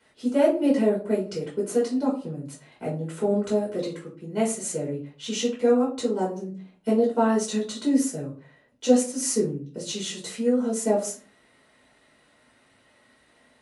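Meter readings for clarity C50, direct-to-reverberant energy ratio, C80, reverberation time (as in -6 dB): 8.0 dB, -7.0 dB, 13.5 dB, 0.40 s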